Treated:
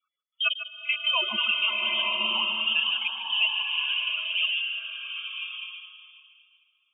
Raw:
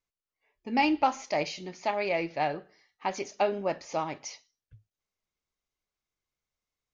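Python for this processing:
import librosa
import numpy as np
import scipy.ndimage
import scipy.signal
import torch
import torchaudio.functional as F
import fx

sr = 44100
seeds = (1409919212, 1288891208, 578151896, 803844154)

p1 = fx.block_reorder(x, sr, ms=81.0, group=5)
p2 = fx.low_shelf(p1, sr, hz=79.0, db=-5.5)
p3 = fx.over_compress(p2, sr, threshold_db=-37.0, ratio=-1.0)
p4 = p2 + F.gain(torch.from_numpy(p3), 1.0).numpy()
p5 = fx.spec_topn(p4, sr, count=16)
p6 = fx.step_gate(p5, sr, bpm=141, pattern='xx.xx...x.xxxx', floor_db=-60.0, edge_ms=4.5)
p7 = p6 + fx.echo_single(p6, sr, ms=148, db=-11.5, dry=0)
p8 = fx.freq_invert(p7, sr, carrier_hz=3400)
y = fx.rev_bloom(p8, sr, seeds[0], attack_ms=1080, drr_db=-1.5)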